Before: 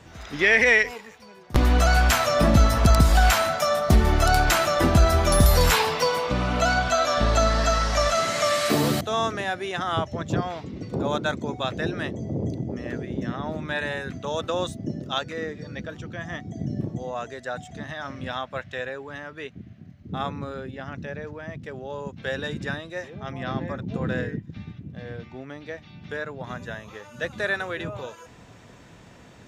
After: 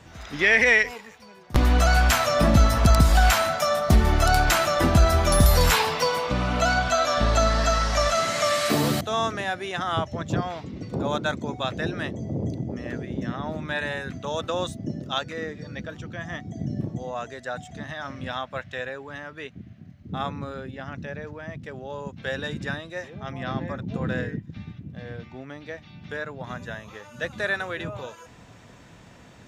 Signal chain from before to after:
parametric band 400 Hz −2.5 dB 0.68 octaves

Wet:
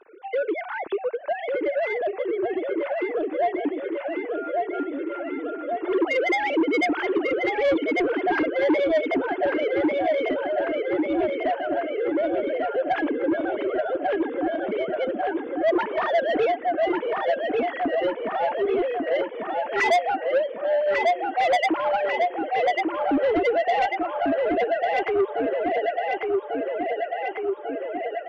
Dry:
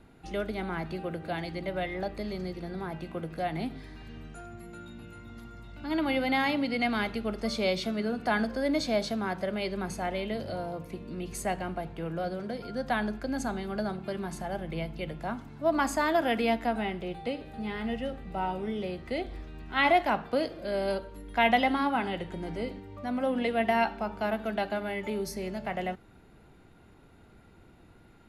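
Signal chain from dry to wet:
three sine waves on the formant tracks
parametric band 330 Hz +11 dB 0.8 octaves
repeating echo 1,145 ms, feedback 60%, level −5 dB
in parallel at +1 dB: downward compressor, threshold −35 dBFS, peak gain reduction 21 dB
on the sum: soft clipping −19 dBFS, distortion −12 dB
level +3 dB

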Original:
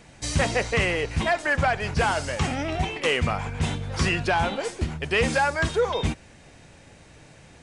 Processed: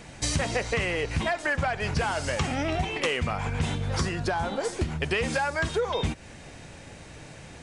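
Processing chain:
downward compressor, threshold −29 dBFS, peak gain reduction 11 dB
0:03.99–0:04.73: parametric band 2,600 Hz −9 dB 0.69 octaves
level +5 dB

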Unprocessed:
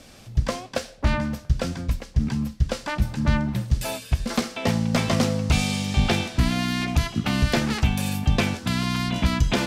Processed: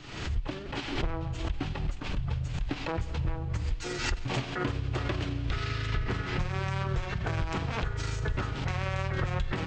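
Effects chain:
pitch shift by two crossfaded delay taps −10.5 semitones
downward compressor, threshold −26 dBFS, peak gain reduction 11.5 dB
four-comb reverb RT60 3.4 s, combs from 33 ms, DRR 15.5 dB
background raised ahead of every attack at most 62 dB per second
level −1.5 dB

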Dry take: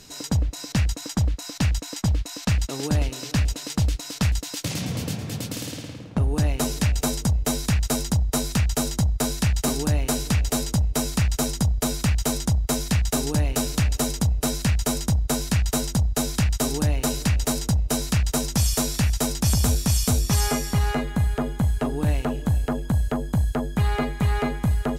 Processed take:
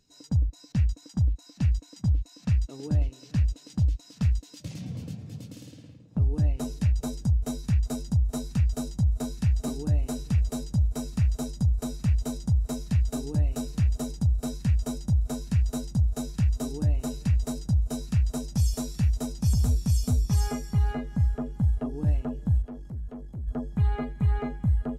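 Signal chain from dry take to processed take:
feedback echo with a high-pass in the loop 824 ms, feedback 75%, high-pass 200 Hz, level −19.5 dB
0:22.62–0:23.48: tube saturation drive 26 dB, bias 0.35
every bin expanded away from the loudest bin 1.5 to 1
level −3.5 dB

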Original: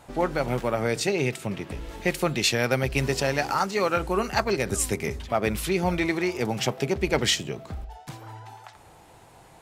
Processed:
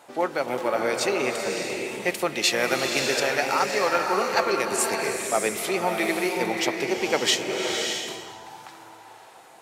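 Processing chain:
high-pass filter 340 Hz 12 dB per octave
slow-attack reverb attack 610 ms, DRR 2 dB
level +1 dB

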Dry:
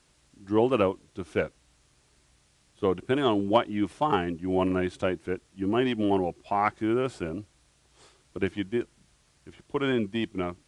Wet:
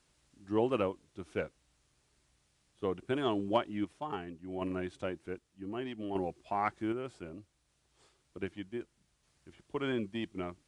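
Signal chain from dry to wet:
sample-and-hold tremolo 1.3 Hz
level −7 dB

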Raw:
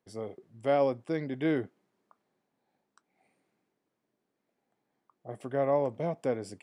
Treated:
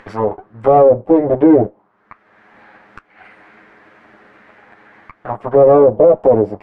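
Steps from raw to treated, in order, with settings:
lower of the sound and its delayed copy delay 9.6 ms
envelope filter 530–1,800 Hz, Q 2.4, down, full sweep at −31.5 dBFS
upward compression, threshold −52 dBFS
spectral tilt −4 dB per octave
boost into a limiter +27.5 dB
level −1 dB

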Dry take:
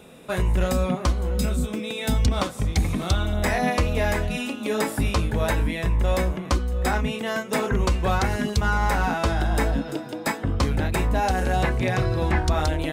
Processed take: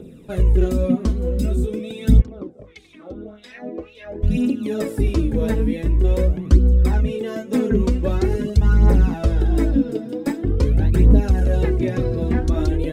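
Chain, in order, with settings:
low shelf with overshoot 570 Hz +12.5 dB, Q 1.5
phase shifter 0.45 Hz, delay 4.7 ms, feedback 61%
0:02.20–0:04.22: LFO wah 1.1 Hz → 2.5 Hz 350–3,800 Hz, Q 2.5
level −9 dB

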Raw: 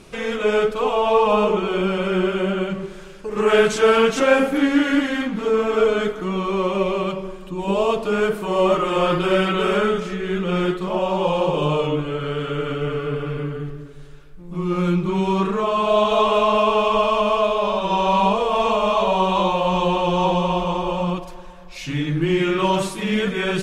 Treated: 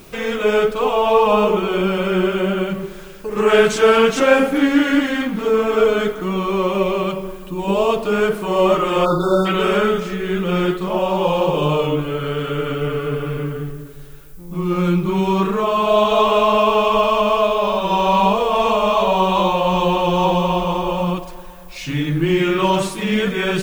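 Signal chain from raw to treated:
background noise violet −53 dBFS
time-frequency box erased 0:09.05–0:09.46, 1,500–3,500 Hz
level +2.5 dB

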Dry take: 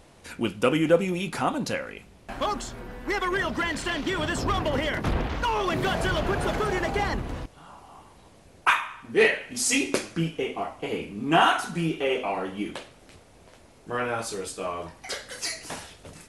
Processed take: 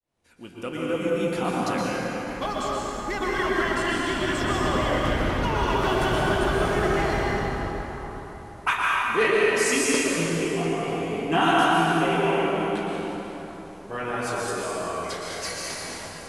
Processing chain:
fade in at the beginning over 1.69 s
dense smooth reverb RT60 3.9 s, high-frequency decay 0.6×, pre-delay 105 ms, DRR −5 dB
level −3.5 dB

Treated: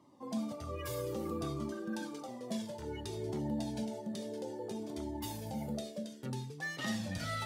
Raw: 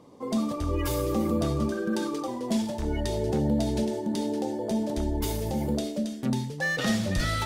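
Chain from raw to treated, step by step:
high-pass filter 94 Hz 24 dB per octave
flanger whose copies keep moving one way falling 0.59 Hz
level −5.5 dB

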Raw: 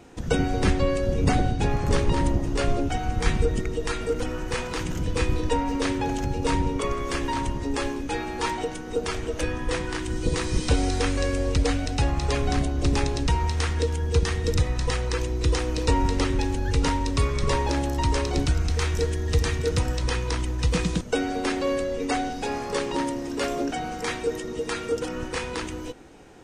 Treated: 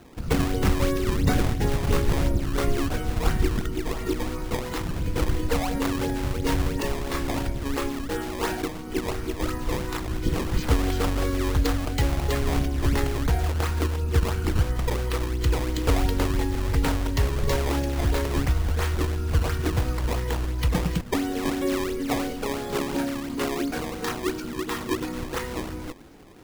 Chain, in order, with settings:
formants moved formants −4 semitones
sample-and-hold swept by an LFO 18×, swing 160% 2.9 Hz

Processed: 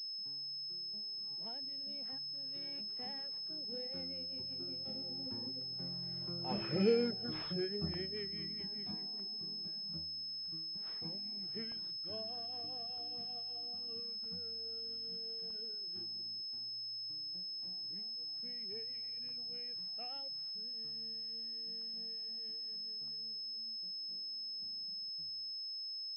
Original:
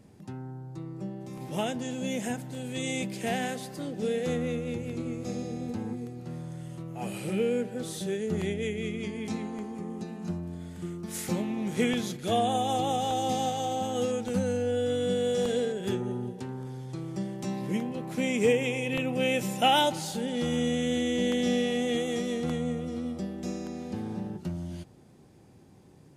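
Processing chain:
source passing by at 0:06.88, 26 m/s, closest 13 metres
reverb reduction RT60 1.2 s
switching amplifier with a slow clock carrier 5,200 Hz
level −1 dB

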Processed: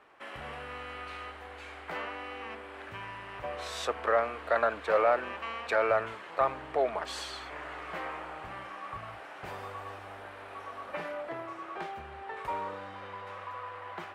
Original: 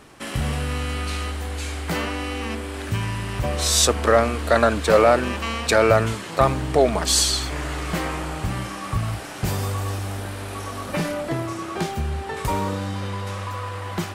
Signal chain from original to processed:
three-way crossover with the lows and the highs turned down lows −19 dB, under 440 Hz, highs −21 dB, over 2,800 Hz
level −7.5 dB

